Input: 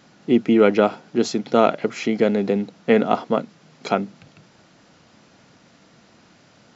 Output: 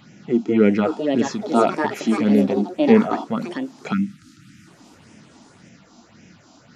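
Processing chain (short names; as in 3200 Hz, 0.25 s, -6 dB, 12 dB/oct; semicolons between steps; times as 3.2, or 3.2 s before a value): phaser stages 6, 1.8 Hz, lowest notch 120–1200 Hz; harmonic-percussive split percussive -11 dB; in parallel at -3 dB: compressor, threshold -36 dBFS, peak gain reduction 20 dB; on the sum: echoes that change speed 0.627 s, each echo +5 st, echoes 2, each echo -6 dB; spectral delete 3.93–4.67, 330–1200 Hz; gain +5.5 dB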